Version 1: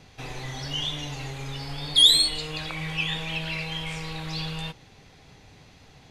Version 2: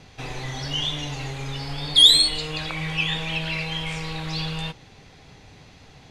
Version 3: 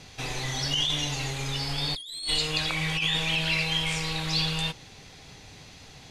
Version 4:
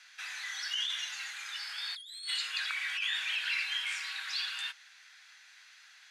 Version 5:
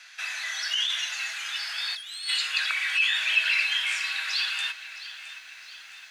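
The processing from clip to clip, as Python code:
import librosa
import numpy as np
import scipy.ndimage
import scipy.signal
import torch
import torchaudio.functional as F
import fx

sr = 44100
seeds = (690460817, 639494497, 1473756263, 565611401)

y1 = scipy.signal.sosfilt(scipy.signal.bessel(2, 10000.0, 'lowpass', norm='mag', fs=sr, output='sos'), x)
y1 = F.gain(torch.from_numpy(y1), 3.5).numpy()
y2 = fx.high_shelf(y1, sr, hz=3500.0, db=10.5)
y2 = fx.over_compress(y2, sr, threshold_db=-23.0, ratio=-1.0)
y2 = F.gain(torch.from_numpy(y2), -5.5).numpy()
y3 = fx.ladder_highpass(y2, sr, hz=1400.0, resonance_pct=65)
y3 = F.gain(torch.from_numpy(y3), 2.0).numpy()
y4 = fx.small_body(y3, sr, hz=(660.0, 2600.0), ring_ms=85, db=12)
y4 = fx.echo_crushed(y4, sr, ms=665, feedback_pct=55, bits=10, wet_db=-14.5)
y4 = F.gain(torch.from_numpy(y4), 7.0).numpy()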